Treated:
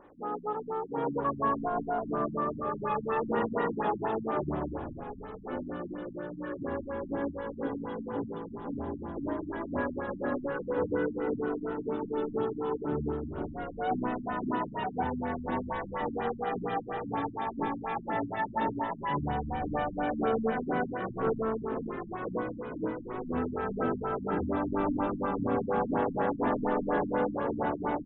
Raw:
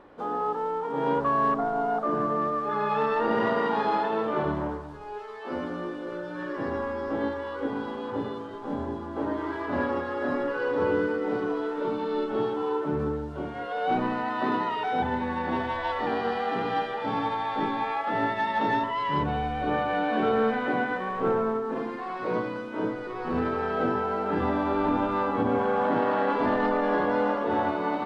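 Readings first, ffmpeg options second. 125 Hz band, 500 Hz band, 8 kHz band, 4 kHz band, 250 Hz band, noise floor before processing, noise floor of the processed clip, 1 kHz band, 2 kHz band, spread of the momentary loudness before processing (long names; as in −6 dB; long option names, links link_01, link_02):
−2.0 dB, −4.5 dB, can't be measured, −11.0 dB, −3.5 dB, −36 dBFS, −44 dBFS, −6.0 dB, −7.5 dB, 8 LU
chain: -filter_complex "[0:a]asplit=7[link_01][link_02][link_03][link_04][link_05][link_06][link_07];[link_02]adelay=349,afreqshift=-53,volume=-10.5dB[link_08];[link_03]adelay=698,afreqshift=-106,volume=-15.7dB[link_09];[link_04]adelay=1047,afreqshift=-159,volume=-20.9dB[link_10];[link_05]adelay=1396,afreqshift=-212,volume=-26.1dB[link_11];[link_06]adelay=1745,afreqshift=-265,volume=-31.3dB[link_12];[link_07]adelay=2094,afreqshift=-318,volume=-36.5dB[link_13];[link_01][link_08][link_09][link_10][link_11][link_12][link_13]amix=inputs=7:normalize=0,afftfilt=real='re*lt(b*sr/1024,280*pow(4000/280,0.5+0.5*sin(2*PI*4.2*pts/sr)))':imag='im*lt(b*sr/1024,280*pow(4000/280,0.5+0.5*sin(2*PI*4.2*pts/sr)))':win_size=1024:overlap=0.75,volume=-3.5dB"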